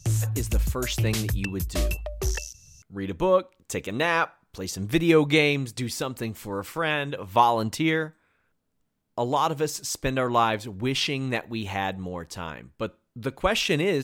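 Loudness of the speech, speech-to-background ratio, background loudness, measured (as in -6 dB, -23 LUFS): -26.5 LUFS, 2.0 dB, -28.5 LUFS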